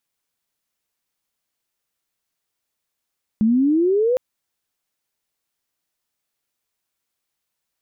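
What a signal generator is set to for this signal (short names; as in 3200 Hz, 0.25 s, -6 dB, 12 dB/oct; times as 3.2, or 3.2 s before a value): chirp logarithmic 210 Hz -> 520 Hz -13 dBFS -> -15 dBFS 0.76 s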